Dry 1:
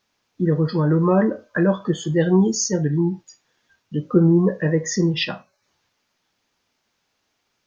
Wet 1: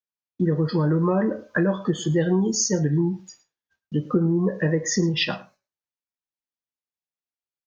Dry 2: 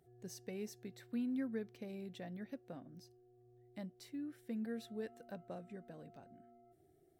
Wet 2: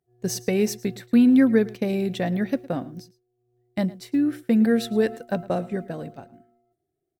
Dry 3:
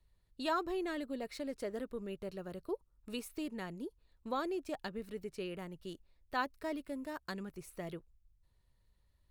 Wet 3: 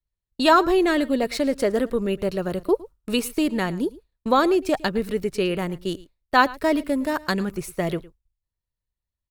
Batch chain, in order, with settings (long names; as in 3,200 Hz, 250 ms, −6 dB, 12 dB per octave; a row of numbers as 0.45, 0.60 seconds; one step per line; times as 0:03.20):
downward expander −49 dBFS
downward compressor, threshold −19 dBFS
single-tap delay 110 ms −20.5 dB
loudness normalisation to −23 LKFS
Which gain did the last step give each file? +1.5, +22.5, +18.0 decibels